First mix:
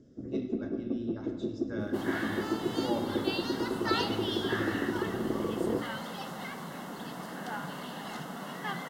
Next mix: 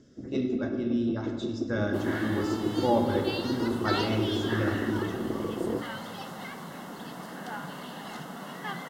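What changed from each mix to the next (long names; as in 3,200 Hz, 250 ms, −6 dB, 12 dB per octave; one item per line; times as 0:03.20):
speech +10.0 dB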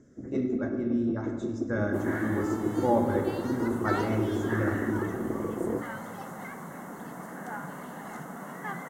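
master: add flat-topped bell 3,700 Hz −14 dB 1.2 octaves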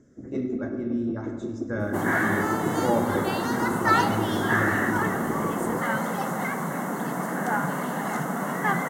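second sound +12.0 dB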